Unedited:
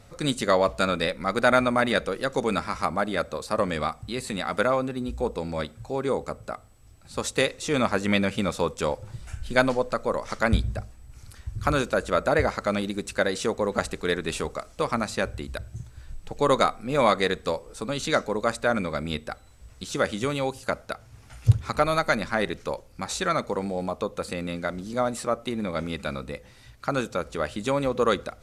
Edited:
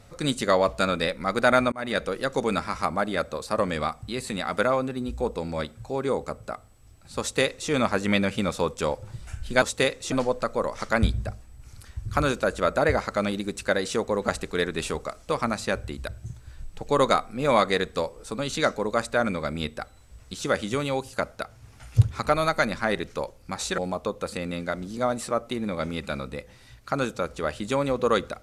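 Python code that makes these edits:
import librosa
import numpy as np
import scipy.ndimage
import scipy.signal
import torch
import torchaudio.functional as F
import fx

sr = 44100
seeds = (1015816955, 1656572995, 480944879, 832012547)

y = fx.edit(x, sr, fx.fade_in_span(start_s=1.72, length_s=0.44, curve='qsin'),
    fx.duplicate(start_s=7.2, length_s=0.5, to_s=9.62),
    fx.cut(start_s=23.28, length_s=0.46), tone=tone)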